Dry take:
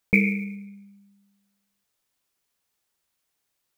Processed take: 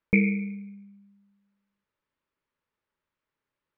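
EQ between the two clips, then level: Butterworth band-stop 730 Hz, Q 5; LPF 1900 Hz 12 dB/oct; 0.0 dB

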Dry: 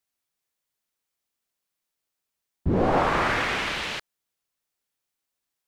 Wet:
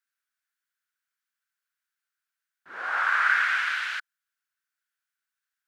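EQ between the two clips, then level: resonant high-pass 1500 Hz, resonance Q 6.8; -6.5 dB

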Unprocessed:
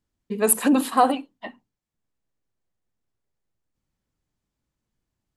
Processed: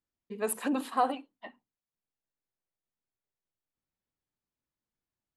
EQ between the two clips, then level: low shelf 230 Hz -9.5 dB; high shelf 5700 Hz -9.5 dB; -8.0 dB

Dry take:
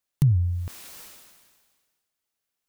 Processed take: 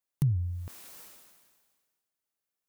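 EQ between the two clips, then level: low shelf 110 Hz -6.5 dB; bell 3500 Hz -4 dB 2.5 oct; -4.0 dB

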